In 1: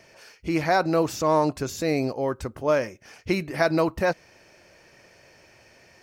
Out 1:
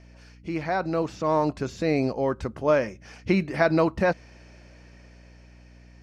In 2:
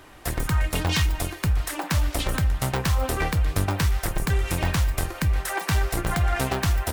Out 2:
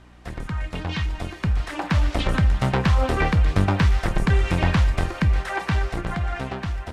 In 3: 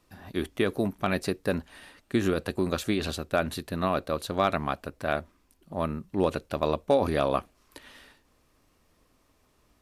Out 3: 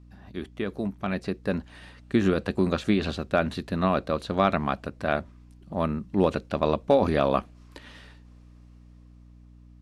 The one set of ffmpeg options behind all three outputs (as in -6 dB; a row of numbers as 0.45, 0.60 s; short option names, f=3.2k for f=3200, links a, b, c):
-filter_complex "[0:a]lowpass=7.1k,acrossover=split=3900[a][b];[b]acompressor=threshold=-47dB:ratio=4:attack=1:release=60[c];[a][c]amix=inputs=2:normalize=0,equalizer=f=200:t=o:w=0.37:g=6,dynaudnorm=f=280:g=11:m=11.5dB,aeval=exprs='val(0)+0.00708*(sin(2*PI*60*n/s)+sin(2*PI*2*60*n/s)/2+sin(2*PI*3*60*n/s)/3+sin(2*PI*4*60*n/s)/4+sin(2*PI*5*60*n/s)/5)':c=same,volume=-6dB"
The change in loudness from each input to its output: -0.5, +2.0, +2.5 LU